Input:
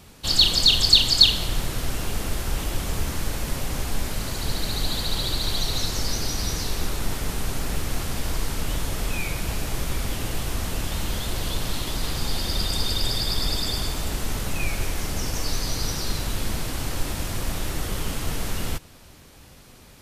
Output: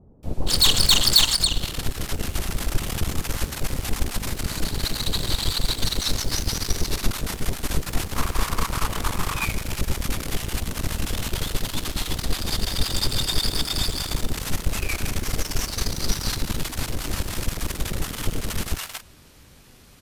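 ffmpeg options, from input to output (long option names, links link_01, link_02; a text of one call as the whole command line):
ffmpeg -i in.wav -filter_complex "[0:a]asettb=1/sr,asplit=3[link_01][link_02][link_03];[link_01]atrim=end=1.114[link_04];[link_02]atrim=start=1.11:end=2.06,asetpts=PTS-STARTPTS,afade=type=in:duration=0.004:curve=qsin,afade=type=out:start_time=0.946:duration=0.004:curve=qsin,acompressor=threshold=-20dB:ratio=4[link_05];[link_03]atrim=start=2.056[link_06];[link_04][link_05]acrossfade=duration=0.004:curve1=hsin:curve2=qsin[link_07];[link_07][link_06]acrossfade=duration=0.004:curve1=qsin:curve2=hsin,asettb=1/sr,asplit=3[link_08][link_09][link_10];[link_08]atrim=end=7.924[link_11];[link_09]atrim=start=7.92:end=9.22,asetpts=PTS-STARTPTS,afade=type=in:duration=0.004:curve=qsin,afade=type=out:start_time=1.296:duration=0.004:curve=qsin,equalizer=frequency=1100:width=2.1:gain=13.5[link_12];[link_10]atrim=start=9.216[link_13];[link_11][link_12]acrossfade=duration=0.004:curve1=hsin:curve2=qsin[link_14];[link_14][link_13]acrossfade=duration=0.004:curve1=qsin:curve2=hsin,aeval=exprs='0.75*(cos(1*acos(clip(val(0)/0.75,-1,1)))-cos(1*PI/2))+0.168*(cos(8*acos(clip(val(0)/0.75,-1,1)))-cos(8*PI/2))':channel_layout=same,acrossover=split=710[link_15][link_16];[link_16]adelay=230[link_17];[link_15][link_17]amix=inputs=2:normalize=0,volume=-1.5dB" out.wav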